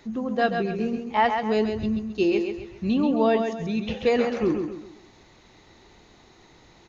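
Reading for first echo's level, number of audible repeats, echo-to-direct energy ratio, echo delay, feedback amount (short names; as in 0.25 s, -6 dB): -6.0 dB, 4, -5.5 dB, 0.134 s, 37%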